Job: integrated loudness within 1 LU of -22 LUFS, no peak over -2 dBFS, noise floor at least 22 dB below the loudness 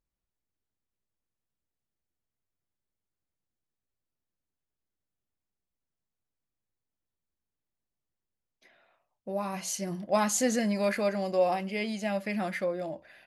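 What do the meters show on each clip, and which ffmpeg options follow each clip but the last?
loudness -30.0 LUFS; peak -14.0 dBFS; loudness target -22.0 LUFS
-> -af "volume=8dB"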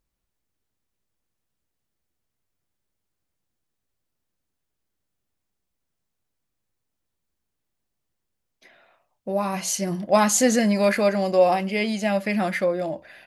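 loudness -22.0 LUFS; peak -6.0 dBFS; noise floor -80 dBFS

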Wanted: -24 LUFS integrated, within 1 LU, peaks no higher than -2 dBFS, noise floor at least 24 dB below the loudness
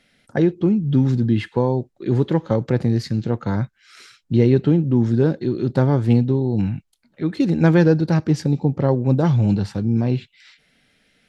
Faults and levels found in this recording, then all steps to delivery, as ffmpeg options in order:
loudness -19.5 LUFS; peak -2.5 dBFS; loudness target -24.0 LUFS
-> -af "volume=-4.5dB"

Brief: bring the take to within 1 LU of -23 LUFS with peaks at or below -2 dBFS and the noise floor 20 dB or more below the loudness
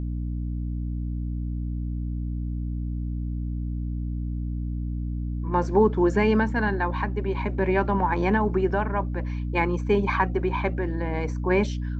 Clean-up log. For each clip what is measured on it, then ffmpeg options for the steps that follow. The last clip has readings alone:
hum 60 Hz; harmonics up to 300 Hz; hum level -26 dBFS; loudness -26.5 LUFS; peak -7.5 dBFS; loudness target -23.0 LUFS
-> -af "bandreject=f=60:t=h:w=4,bandreject=f=120:t=h:w=4,bandreject=f=180:t=h:w=4,bandreject=f=240:t=h:w=4,bandreject=f=300:t=h:w=4"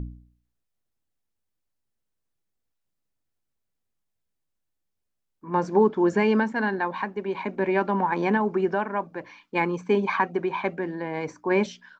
hum none; loudness -25.5 LUFS; peak -8.0 dBFS; loudness target -23.0 LUFS
-> -af "volume=2.5dB"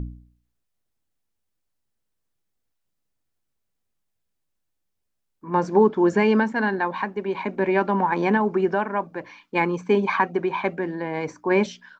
loudness -23.0 LUFS; peak -5.5 dBFS; noise floor -77 dBFS

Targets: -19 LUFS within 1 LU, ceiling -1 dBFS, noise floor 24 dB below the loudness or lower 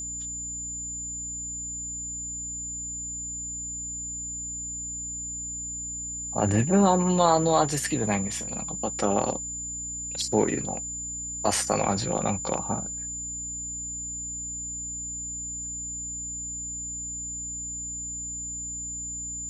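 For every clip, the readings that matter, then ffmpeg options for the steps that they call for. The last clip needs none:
hum 60 Hz; harmonics up to 300 Hz; hum level -42 dBFS; steady tone 7100 Hz; tone level -32 dBFS; loudness -28.5 LUFS; peak -7.0 dBFS; loudness target -19.0 LUFS
-> -af "bandreject=f=60:t=h:w=4,bandreject=f=120:t=h:w=4,bandreject=f=180:t=h:w=4,bandreject=f=240:t=h:w=4,bandreject=f=300:t=h:w=4"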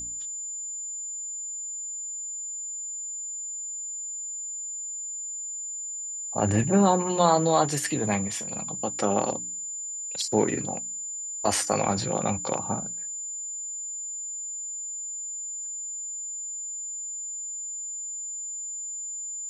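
hum none; steady tone 7100 Hz; tone level -32 dBFS
-> -af "bandreject=f=7.1k:w=30"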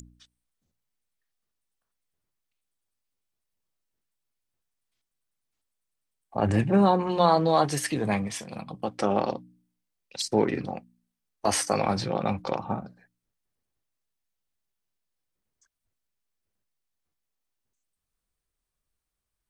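steady tone none; loudness -26.0 LUFS; peak -7.0 dBFS; loudness target -19.0 LUFS
-> -af "volume=7dB,alimiter=limit=-1dB:level=0:latency=1"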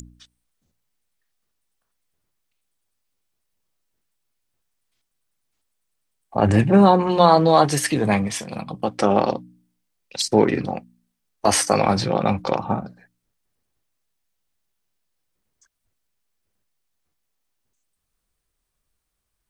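loudness -19.0 LUFS; peak -1.0 dBFS; noise floor -77 dBFS

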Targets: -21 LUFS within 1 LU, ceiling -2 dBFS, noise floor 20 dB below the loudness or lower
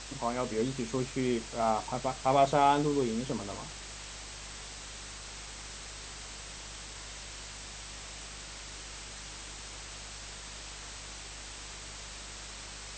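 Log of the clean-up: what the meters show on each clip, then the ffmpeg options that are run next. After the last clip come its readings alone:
hum 50 Hz; harmonics up to 200 Hz; hum level -48 dBFS; noise floor -45 dBFS; noise floor target -55 dBFS; loudness -35.0 LUFS; peak -12.0 dBFS; loudness target -21.0 LUFS
-> -af "bandreject=f=50:t=h:w=4,bandreject=f=100:t=h:w=4,bandreject=f=150:t=h:w=4,bandreject=f=200:t=h:w=4"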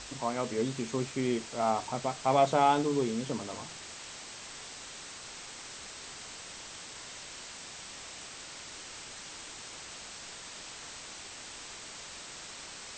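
hum none; noise floor -46 dBFS; noise floor target -55 dBFS
-> -af "afftdn=nr=9:nf=-46"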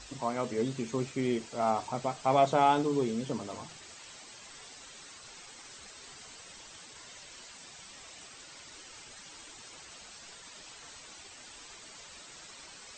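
noise floor -51 dBFS; loudness -30.5 LUFS; peak -12.0 dBFS; loudness target -21.0 LUFS
-> -af "volume=9.5dB"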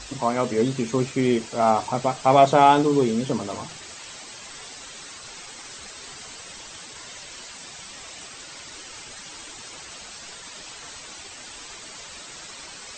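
loudness -21.0 LUFS; peak -2.5 dBFS; noise floor -41 dBFS

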